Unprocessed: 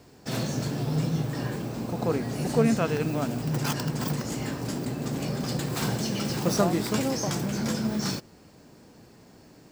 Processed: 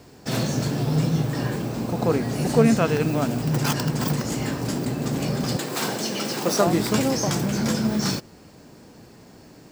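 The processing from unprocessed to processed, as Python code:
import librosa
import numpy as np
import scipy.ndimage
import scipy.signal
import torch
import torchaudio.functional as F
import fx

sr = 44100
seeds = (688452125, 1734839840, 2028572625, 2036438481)

y = fx.highpass(x, sr, hz=280.0, slope=12, at=(5.56, 6.67))
y = y * librosa.db_to_amplitude(5.0)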